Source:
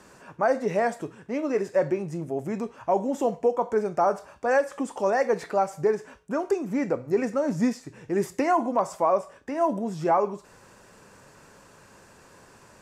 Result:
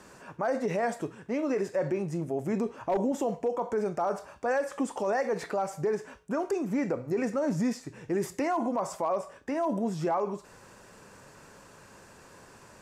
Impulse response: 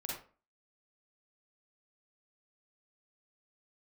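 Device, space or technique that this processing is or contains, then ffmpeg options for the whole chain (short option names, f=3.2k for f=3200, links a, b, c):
clipper into limiter: -filter_complex "[0:a]asettb=1/sr,asplit=3[a][b][c];[a]atrim=end=2.534[d];[b]atrim=start=2.53:end=3.12,asetpts=PTS-STARTPTS,afade=t=in:d=0.004:c=qsin,afade=t=out:st=0.586:d=0.004:c=qsin,equalizer=f=340:w=0.95:g=6[e];[c]atrim=start=3.116[f];[d][e]acrossfade=d=0.004:c1=hsin:c2=qsin[g];[g][f]acrossfade=d=0.004:c1=qsin:c2=hsin,asoftclip=type=hard:threshold=-13.5dB,alimiter=limit=-21dB:level=0:latency=1:release=35"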